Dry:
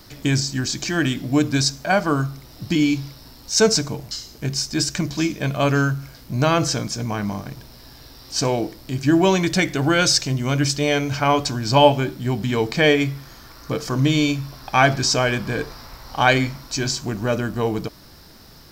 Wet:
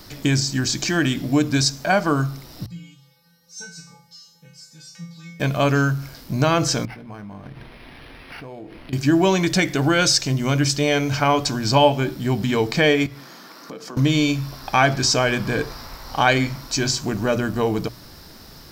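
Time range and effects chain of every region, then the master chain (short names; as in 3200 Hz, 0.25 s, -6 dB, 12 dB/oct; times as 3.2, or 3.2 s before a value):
2.66–5.4 HPF 63 Hz + compressor 1.5:1, threshold -32 dBFS + resonator 170 Hz, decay 0.47 s, harmonics odd, mix 100%
6.85–8.93 compressor 12:1, threshold -35 dBFS + decimation joined by straight lines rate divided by 6×
13.06–13.97 steep high-pass 160 Hz 48 dB/oct + high shelf 6200 Hz -5.5 dB + compressor 4:1, threshold -37 dBFS
whole clip: notches 60/120 Hz; compressor 1.5:1, threshold -22 dBFS; gain +3 dB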